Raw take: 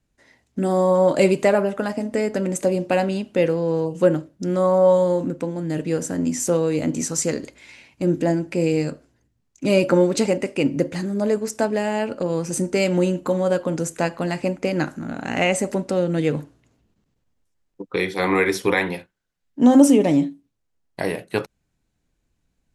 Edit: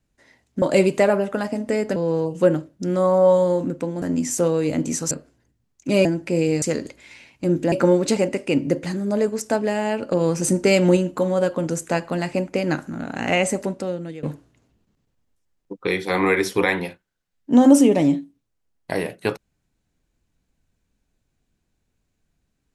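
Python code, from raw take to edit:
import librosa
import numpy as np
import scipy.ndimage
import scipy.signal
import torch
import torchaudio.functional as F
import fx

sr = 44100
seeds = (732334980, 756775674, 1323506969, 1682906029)

y = fx.edit(x, sr, fx.cut(start_s=0.62, length_s=0.45),
    fx.cut(start_s=2.41, length_s=1.15),
    fx.cut(start_s=5.62, length_s=0.49),
    fx.swap(start_s=7.2, length_s=1.1, other_s=8.87, other_length_s=0.94),
    fx.clip_gain(start_s=12.21, length_s=0.85, db=3.5),
    fx.fade_out_to(start_s=15.6, length_s=0.72, floor_db=-20.5), tone=tone)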